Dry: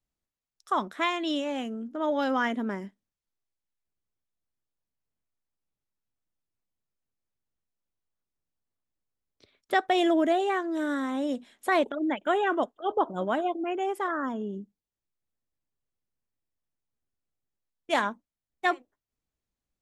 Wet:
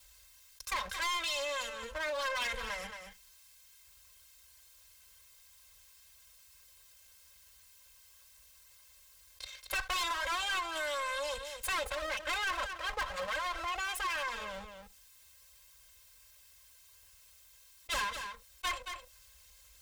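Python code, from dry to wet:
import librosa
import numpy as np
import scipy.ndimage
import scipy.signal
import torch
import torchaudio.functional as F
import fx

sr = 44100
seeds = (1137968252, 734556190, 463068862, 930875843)

p1 = fx.lower_of_two(x, sr, delay_ms=1.9)
p2 = scipy.signal.sosfilt(scipy.signal.butter(2, 46.0, 'highpass', fs=sr, output='sos'), p1)
p3 = fx.tone_stack(p2, sr, knobs='10-0-10')
p4 = p3 + 0.8 * np.pad(p3, (int(3.8 * sr / 1000.0), 0))[:len(p3)]
p5 = fx.level_steps(p4, sr, step_db=12)
p6 = p4 + F.gain(torch.from_numpy(p5), 1.0).numpy()
p7 = 10.0 ** (-30.0 / 20.0) * np.tanh(p6 / 10.0 ** (-30.0 / 20.0))
p8 = p7 + fx.echo_single(p7, sr, ms=224, db=-15.5, dry=0)
y = fx.env_flatten(p8, sr, amount_pct=50)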